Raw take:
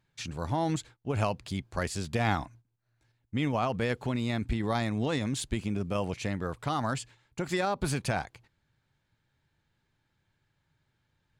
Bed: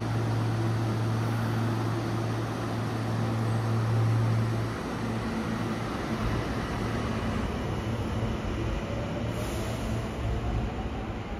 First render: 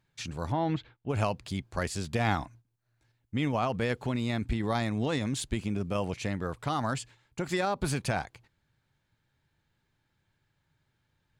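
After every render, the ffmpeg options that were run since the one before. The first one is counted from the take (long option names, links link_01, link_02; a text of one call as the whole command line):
ffmpeg -i in.wav -filter_complex "[0:a]asettb=1/sr,asplit=3[link_01][link_02][link_03];[link_01]atrim=end=0.524[link_04];[link_02]atrim=start=0.52:end=1.09,asetpts=PTS-STARTPTS,afade=type=in:duration=0.004:curve=qsin,afade=type=out:start_time=0.566:duration=0.004:curve=qsin,lowpass=frequency=3600:width=0.5412,lowpass=frequency=3600:width=1.3066[link_05];[link_03]atrim=start=1.086[link_06];[link_04][link_05]acrossfade=duration=0.004:curve1=hsin:curve2=qsin[link_07];[link_07][link_06]acrossfade=duration=0.004:curve1=qsin:curve2=hsin" out.wav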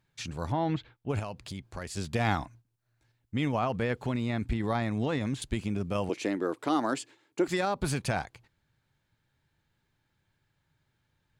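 ffmpeg -i in.wav -filter_complex "[0:a]asettb=1/sr,asplit=3[link_01][link_02][link_03];[link_01]atrim=end=1.194[link_04];[link_02]atrim=start=1.19:end=1.97,asetpts=PTS-STARTPTS,afade=type=in:duration=0.004:curve=qsin,afade=type=out:start_time=0.776:duration=0.004:curve=qsin,acompressor=threshold=-37dB:ratio=2.5:attack=3.2:release=140:knee=1:detection=peak[link_05];[link_03]atrim=start=1.966[link_06];[link_04][link_05]acrossfade=duration=0.004:curve1=hsin:curve2=qsin[link_07];[link_07][link_06]acrossfade=duration=0.004:curve1=qsin:curve2=hsin,asettb=1/sr,asplit=3[link_08][link_09][link_10];[link_08]atrim=end=3.524[link_11];[link_09]atrim=start=3.52:end=5.42,asetpts=PTS-STARTPTS,afade=type=in:duration=0.004:curve=qsin,afade=type=out:start_time=1.896:duration=0.004:curve=qsin,acrossover=split=3000[link_12][link_13];[link_13]acompressor=threshold=-49dB:ratio=4:attack=1:release=60[link_14];[link_12][link_14]amix=inputs=2:normalize=0[link_15];[link_10]atrim=start=5.416[link_16];[link_11][link_15]acrossfade=duration=0.004:curve1=hsin:curve2=qsin[link_17];[link_17][link_16]acrossfade=duration=0.004:curve1=qsin:curve2=hsin,asettb=1/sr,asplit=3[link_18][link_19][link_20];[link_18]atrim=end=6.094[link_21];[link_19]atrim=start=6.09:end=7.48,asetpts=PTS-STARTPTS,afade=type=in:duration=0.004:curve=qsin,afade=type=out:start_time=1.386:duration=0.004:curve=qsin,highpass=frequency=320:width_type=q:width=3.9[link_22];[link_20]atrim=start=7.476[link_23];[link_21][link_22]acrossfade=duration=0.004:curve1=hsin:curve2=qsin[link_24];[link_24][link_23]acrossfade=duration=0.004:curve1=qsin:curve2=hsin" out.wav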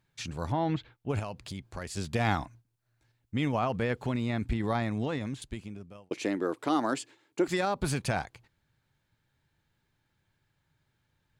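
ffmpeg -i in.wav -filter_complex "[0:a]asplit=2[link_01][link_02];[link_01]atrim=end=6.11,asetpts=PTS-STARTPTS,afade=type=out:start_time=4.79:duration=1.32[link_03];[link_02]atrim=start=6.11,asetpts=PTS-STARTPTS,afade=type=in:duration=0.004:curve=hsin[link_04];[link_03][link_04]concat=n=2:v=0:a=1" out.wav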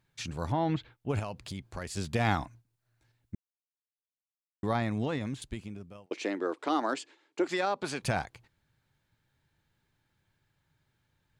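ffmpeg -i in.wav -filter_complex "[0:a]asettb=1/sr,asplit=3[link_01][link_02][link_03];[link_01]atrim=end=6.064[link_04];[link_02]atrim=start=6.06:end=8.02,asetpts=PTS-STARTPTS,afade=type=in:duration=0.004:curve=qsin,afade=type=out:start_time=1.956:duration=0.004:curve=qsin,highpass=310,lowpass=6500[link_05];[link_03]atrim=start=8.016[link_06];[link_04][link_05]acrossfade=duration=0.004:curve1=hsin:curve2=qsin[link_07];[link_07][link_06]acrossfade=duration=0.004:curve1=qsin:curve2=hsin,asplit=3[link_08][link_09][link_10];[link_08]atrim=end=3.35,asetpts=PTS-STARTPTS,afade=type=out:start_time=3.346:duration=0.004:curve=hsin[link_11];[link_09]atrim=start=3.35:end=4.63,asetpts=PTS-STARTPTS,volume=0[link_12];[link_10]atrim=start=4.63,asetpts=PTS-STARTPTS,afade=type=in:duration=0.004:curve=hsin[link_13];[link_11][link_12][link_13]concat=n=3:v=0:a=1" out.wav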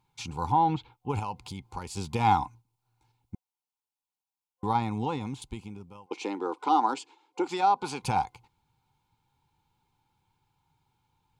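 ffmpeg -i in.wav -af "superequalizer=8b=0.355:9b=3.55:11b=0.282" out.wav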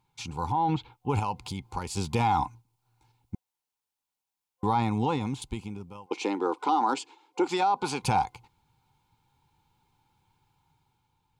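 ffmpeg -i in.wav -af "alimiter=limit=-20dB:level=0:latency=1:release=10,dynaudnorm=framelen=100:gausssize=13:maxgain=4dB" out.wav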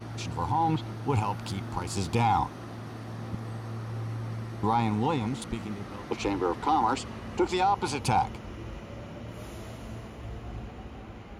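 ffmpeg -i in.wav -i bed.wav -filter_complex "[1:a]volume=-9.5dB[link_01];[0:a][link_01]amix=inputs=2:normalize=0" out.wav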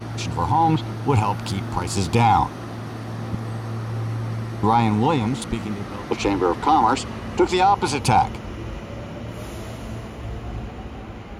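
ffmpeg -i in.wav -af "volume=8dB" out.wav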